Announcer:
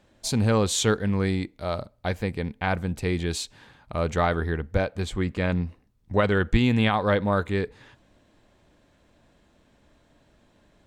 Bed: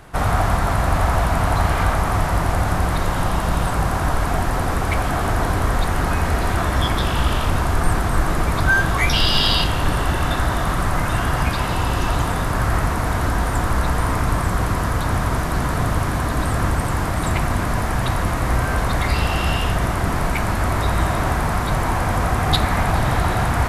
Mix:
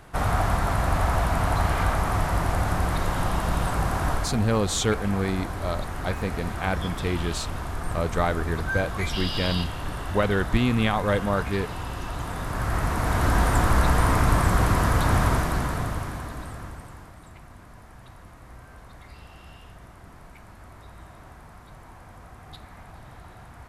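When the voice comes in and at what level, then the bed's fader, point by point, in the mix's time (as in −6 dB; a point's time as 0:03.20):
4.00 s, −1.5 dB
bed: 0:04.13 −5 dB
0:04.40 −12.5 dB
0:12.12 −12.5 dB
0:13.37 −0.5 dB
0:15.26 −0.5 dB
0:17.28 −26.5 dB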